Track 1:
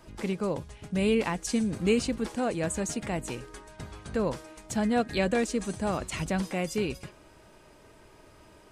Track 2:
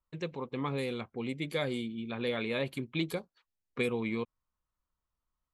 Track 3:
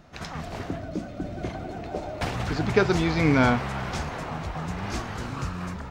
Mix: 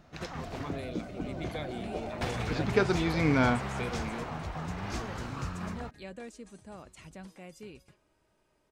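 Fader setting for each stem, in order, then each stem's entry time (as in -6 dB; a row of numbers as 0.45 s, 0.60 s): -17.5 dB, -7.0 dB, -5.0 dB; 0.85 s, 0.00 s, 0.00 s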